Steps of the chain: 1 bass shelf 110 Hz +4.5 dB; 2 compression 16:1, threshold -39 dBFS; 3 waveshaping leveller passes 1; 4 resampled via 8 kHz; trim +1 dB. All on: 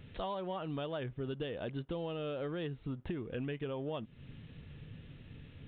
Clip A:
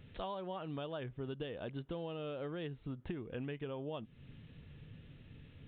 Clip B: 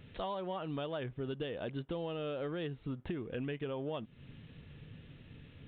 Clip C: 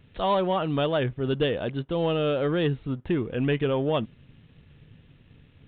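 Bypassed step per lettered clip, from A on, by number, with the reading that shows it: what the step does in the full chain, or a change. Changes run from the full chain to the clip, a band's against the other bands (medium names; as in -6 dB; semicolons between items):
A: 3, crest factor change +2.5 dB; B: 1, momentary loudness spread change +2 LU; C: 2, mean gain reduction 9.0 dB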